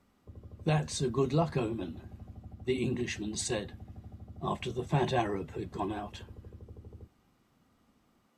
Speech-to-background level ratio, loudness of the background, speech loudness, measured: 16.0 dB, -49.5 LUFS, -33.5 LUFS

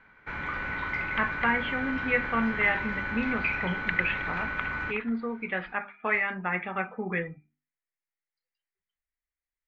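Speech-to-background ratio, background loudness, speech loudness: 2.0 dB, -32.0 LUFS, -30.0 LUFS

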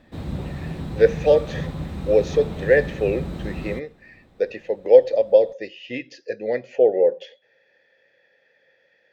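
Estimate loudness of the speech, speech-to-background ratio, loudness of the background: -20.0 LUFS, 11.5 dB, -31.5 LUFS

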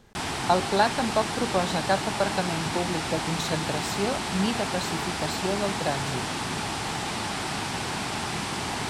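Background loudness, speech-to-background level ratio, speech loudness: -29.5 LUFS, 0.5 dB, -29.0 LUFS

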